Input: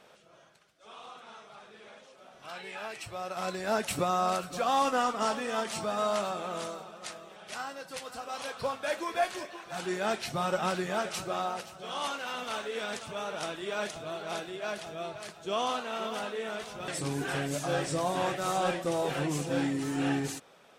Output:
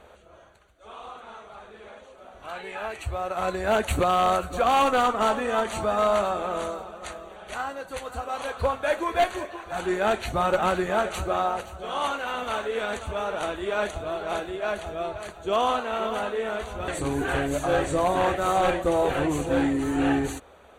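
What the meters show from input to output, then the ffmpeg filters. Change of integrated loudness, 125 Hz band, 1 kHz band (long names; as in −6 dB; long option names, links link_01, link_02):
+6.5 dB, +4.5 dB, +7.0 dB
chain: -filter_complex "[0:a]lowshelf=frequency=100:width_type=q:width=3:gain=12,asplit=2[link_01][link_02];[link_02]adynamicsmooth=sensitivity=2:basefreq=2100,volume=2dB[link_03];[link_01][link_03]amix=inputs=2:normalize=0,aeval=exprs='0.168*(abs(mod(val(0)/0.168+3,4)-2)-1)':channel_layout=same,asuperstop=centerf=5200:order=4:qfactor=4,volume=1.5dB"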